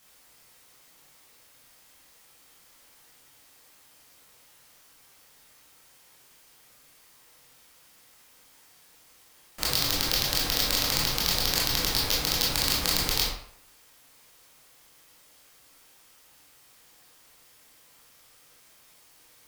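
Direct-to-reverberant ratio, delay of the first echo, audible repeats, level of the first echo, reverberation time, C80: −5.5 dB, no echo audible, no echo audible, no echo audible, 0.65 s, 6.5 dB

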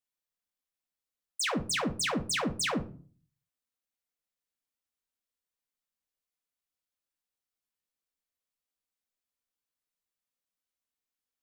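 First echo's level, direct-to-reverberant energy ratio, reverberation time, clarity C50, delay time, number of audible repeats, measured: no echo audible, 4.5 dB, 0.40 s, 13.5 dB, no echo audible, no echo audible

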